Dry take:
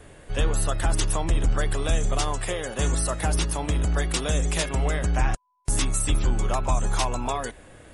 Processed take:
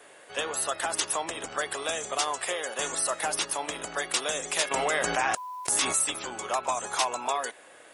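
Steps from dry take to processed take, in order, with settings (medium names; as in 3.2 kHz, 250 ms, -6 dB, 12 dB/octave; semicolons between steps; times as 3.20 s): high-pass 560 Hz 12 dB/octave; 4.71–6.04 s: level flattener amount 70%; trim +1 dB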